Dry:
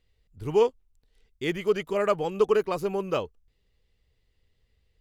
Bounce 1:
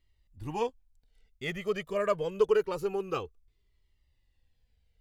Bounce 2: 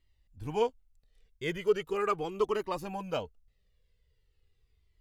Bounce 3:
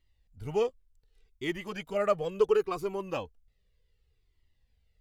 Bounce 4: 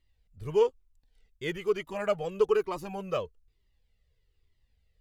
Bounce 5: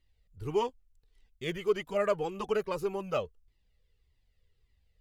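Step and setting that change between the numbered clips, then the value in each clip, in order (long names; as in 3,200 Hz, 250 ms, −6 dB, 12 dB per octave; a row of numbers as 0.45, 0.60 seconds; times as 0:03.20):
flanger whose copies keep moving one way, speed: 0.26, 0.4, 0.68, 1.1, 1.7 Hertz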